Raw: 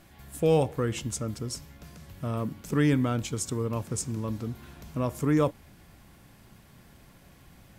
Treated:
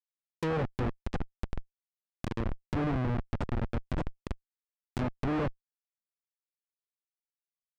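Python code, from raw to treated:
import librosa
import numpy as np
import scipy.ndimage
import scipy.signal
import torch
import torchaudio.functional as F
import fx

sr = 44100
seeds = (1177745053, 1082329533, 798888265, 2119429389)

y = fx.rattle_buzz(x, sr, strikes_db=-38.0, level_db=-26.0)
y = fx.schmitt(y, sr, flips_db=-25.0)
y = fx.env_lowpass_down(y, sr, base_hz=1900.0, full_db=-29.0)
y = y * 10.0 ** (1.5 / 20.0)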